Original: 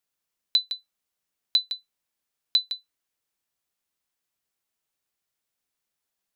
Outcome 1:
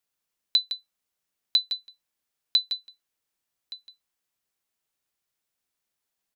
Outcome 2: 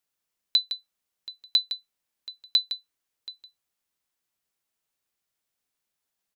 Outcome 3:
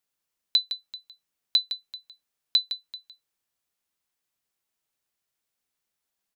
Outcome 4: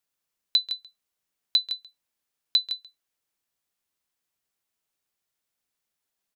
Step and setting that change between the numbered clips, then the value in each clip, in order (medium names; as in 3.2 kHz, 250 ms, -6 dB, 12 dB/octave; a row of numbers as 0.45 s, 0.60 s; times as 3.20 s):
delay, time: 1170 ms, 728 ms, 387 ms, 136 ms